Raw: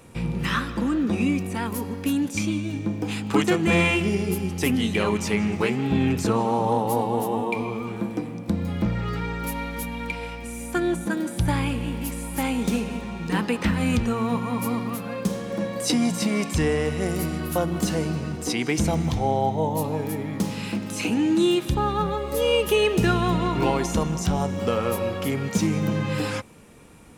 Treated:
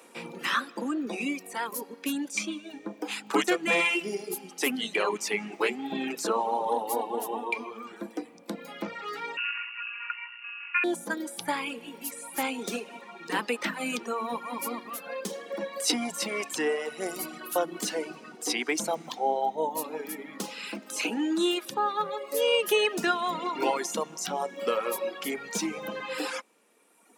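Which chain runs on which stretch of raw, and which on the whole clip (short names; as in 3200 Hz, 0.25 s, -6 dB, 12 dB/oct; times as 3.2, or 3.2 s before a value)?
9.37–10.84 sample sorter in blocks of 32 samples + inverted band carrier 2800 Hz + Chebyshev high-pass 900 Hz, order 6
whole clip: Bessel high-pass 400 Hz, order 6; reverb removal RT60 1.9 s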